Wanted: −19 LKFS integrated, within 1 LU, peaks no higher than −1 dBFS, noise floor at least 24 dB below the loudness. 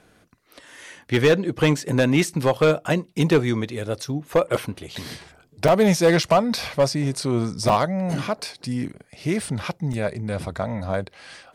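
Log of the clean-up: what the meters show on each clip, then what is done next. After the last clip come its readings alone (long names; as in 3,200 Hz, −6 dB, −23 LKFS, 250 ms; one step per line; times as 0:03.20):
share of clipped samples 0.6%; peaks flattened at −10.5 dBFS; number of dropouts 4; longest dropout 4.5 ms; integrated loudness −22.5 LKFS; sample peak −10.5 dBFS; target loudness −19.0 LKFS
→ clipped peaks rebuilt −10.5 dBFS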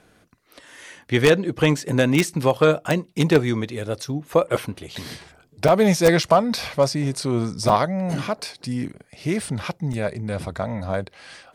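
share of clipped samples 0.0%; number of dropouts 4; longest dropout 4.5 ms
→ repair the gap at 0:05.68/0:06.23/0:07.69/0:09.93, 4.5 ms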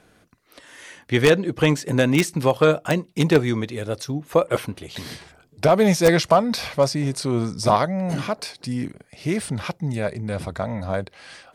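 number of dropouts 0; integrated loudness −21.5 LKFS; sample peak −1.5 dBFS; target loudness −19.0 LKFS
→ level +2.5 dB
brickwall limiter −1 dBFS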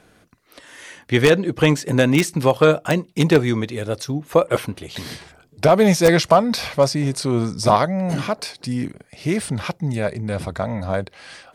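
integrated loudness −19.5 LKFS; sample peak −1.0 dBFS; background noise floor −56 dBFS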